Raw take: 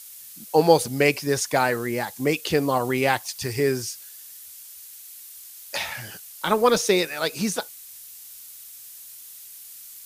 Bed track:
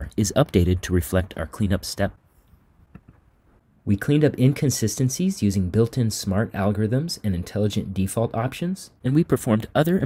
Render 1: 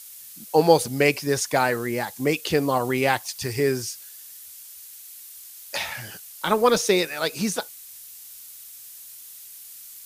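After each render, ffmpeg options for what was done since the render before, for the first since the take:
-af anull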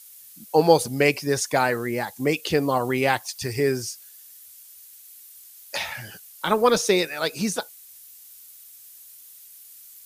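-af "afftdn=nr=6:nf=-43"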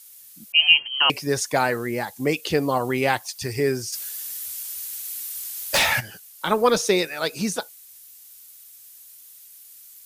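-filter_complex "[0:a]asettb=1/sr,asplit=3[a][b][c];[a]atrim=end=0.524[d];[b]atrim=start=0.52:end=1.1,asetpts=PTS-STARTPTS,afade=t=in:d=0.004:c=qsin,afade=t=out:st=0.576:d=0.004:c=qsin,lowpass=f=2.8k:t=q:w=0.5098,lowpass=f=2.8k:t=q:w=0.6013,lowpass=f=2.8k:t=q:w=0.9,lowpass=f=2.8k:t=q:w=2.563,afreqshift=-3300[e];[c]atrim=start=1.096[f];[d][e]acrossfade=d=0.004:c1=hsin:c2=qsin[g];[g][f]acrossfade=d=0.004:c1=qsin:c2=hsin,asplit=3[h][i][j];[h]afade=t=out:st=3.92:d=0.02[k];[i]aeval=exprs='0.188*sin(PI/2*3.16*val(0)/0.188)':c=same,afade=t=in:st=3.92:d=0.02,afade=t=out:st=5.99:d=0.02[l];[j]afade=t=in:st=5.99:d=0.02[m];[k][l][m]amix=inputs=3:normalize=0"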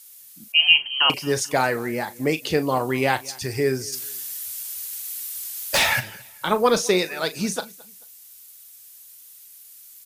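-filter_complex "[0:a]asplit=2[a][b];[b]adelay=38,volume=-13dB[c];[a][c]amix=inputs=2:normalize=0,aecho=1:1:219|438:0.0708|0.0227"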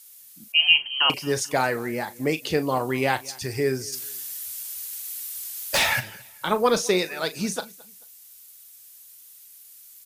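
-af "volume=-2dB"

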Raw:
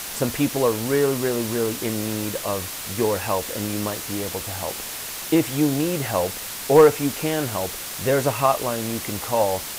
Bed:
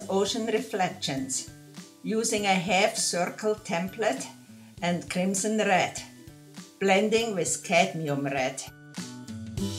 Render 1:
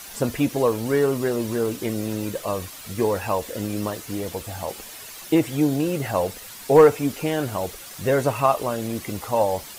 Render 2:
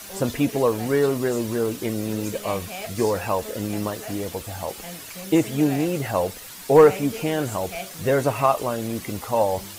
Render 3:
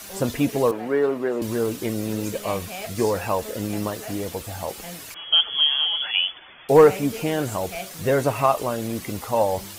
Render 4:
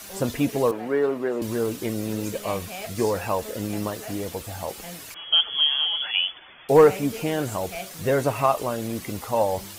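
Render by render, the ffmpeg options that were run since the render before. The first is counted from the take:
-af "afftdn=nr=10:nf=-33"
-filter_complex "[1:a]volume=-12dB[a];[0:a][a]amix=inputs=2:normalize=0"
-filter_complex "[0:a]asettb=1/sr,asplit=3[a][b][c];[a]atrim=end=0.714[d];[b]atrim=start=0.71:end=1.42,asetpts=PTS-STARTPTS,afade=t=in:d=0.004:c=qsin,afade=t=out:st=0.706:d=0.004:c=qsin,acrossover=split=210 2700:gain=0.1 1 0.126[e][f][g];[e][f][g]amix=inputs=3:normalize=0[h];[c]atrim=start=1.416[i];[d][h]acrossfade=d=0.004:c1=hsin:c2=qsin[j];[j][i]acrossfade=d=0.004:c1=qsin:c2=hsin,asettb=1/sr,asplit=3[k][l][m];[k]atrim=end=5.144[n];[l]atrim=start=5.14:end=6.69,asetpts=PTS-STARTPTS,afade=t=in:d=0.004:c=qsin,afade=t=out:st=1.546:d=0.004:c=qsin,lowpass=f=3k:t=q:w=0.5098,lowpass=f=3k:t=q:w=0.6013,lowpass=f=3k:t=q:w=0.9,lowpass=f=3k:t=q:w=2.563,afreqshift=-3500[o];[m]atrim=start=6.686[p];[n][o]acrossfade=d=0.004:c1=hsin:c2=qsin[q];[q][p]acrossfade=d=0.004:c1=qsin:c2=hsin"
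-af "volume=-1.5dB"

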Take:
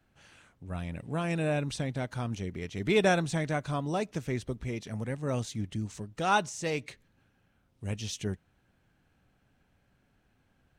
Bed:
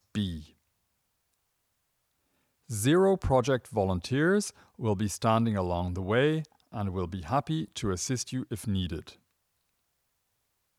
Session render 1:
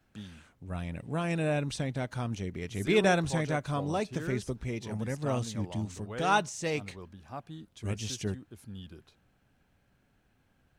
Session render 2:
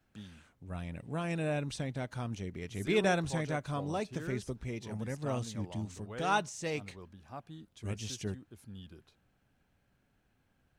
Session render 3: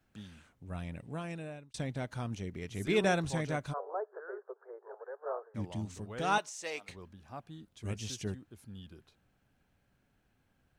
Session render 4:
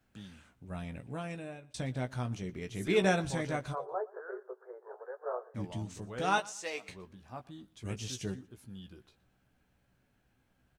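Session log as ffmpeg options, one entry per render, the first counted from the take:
-filter_complex "[1:a]volume=-14dB[a];[0:a][a]amix=inputs=2:normalize=0"
-af "volume=-4dB"
-filter_complex "[0:a]asplit=3[a][b][c];[a]afade=t=out:st=3.72:d=0.02[d];[b]asuperpass=centerf=800:order=20:qfactor=0.65,afade=t=in:st=3.72:d=0.02,afade=t=out:st=5.54:d=0.02[e];[c]afade=t=in:st=5.54:d=0.02[f];[d][e][f]amix=inputs=3:normalize=0,asettb=1/sr,asplit=3[g][h][i];[g]atrim=end=6.384[j];[h]atrim=start=6.38:end=6.89,asetpts=PTS-STARTPTS,afade=t=in:d=0.004:c=qsin,afade=t=out:st=0.506:d=0.004:c=qsin,highpass=560[k];[i]atrim=start=6.886[l];[j][k]acrossfade=d=0.004:c1=hsin:c2=qsin[m];[m][l]acrossfade=d=0.004:c1=qsin:c2=hsin,asplit=2[n][o];[n]atrim=end=1.74,asetpts=PTS-STARTPTS,afade=t=out:st=0.88:d=0.86[p];[o]atrim=start=1.74,asetpts=PTS-STARTPTS,afade=t=in:d=0.004:c=hsin[q];[p][q]concat=n=2:v=0:a=1"
-filter_complex "[0:a]asplit=2[a][b];[b]adelay=16,volume=-7.5dB[c];[a][c]amix=inputs=2:normalize=0,aecho=1:1:118|236:0.075|0.0247"

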